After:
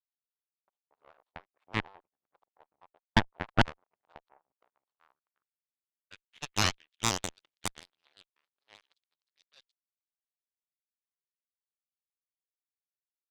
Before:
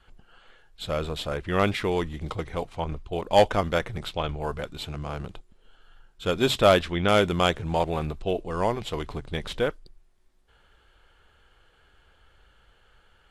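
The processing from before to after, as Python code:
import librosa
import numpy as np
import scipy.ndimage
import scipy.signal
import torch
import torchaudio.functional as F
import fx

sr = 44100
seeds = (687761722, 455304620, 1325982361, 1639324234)

y = fx.local_reverse(x, sr, ms=226.0)
y = fx.cheby_harmonics(y, sr, harmonics=(3, 5), levels_db=(-9, -38), full_scale_db=-7.0)
y = fx.filter_sweep_bandpass(y, sr, from_hz=870.0, to_hz=4200.0, start_s=4.66, end_s=7.41, q=2.2)
y = fx.cheby_harmonics(y, sr, harmonics=(8,), levels_db=(-7,), full_scale_db=-7.5)
y = fx.vibrato_shape(y, sr, shape='square', rate_hz=6.4, depth_cents=160.0)
y = y * librosa.db_to_amplitude(-1.5)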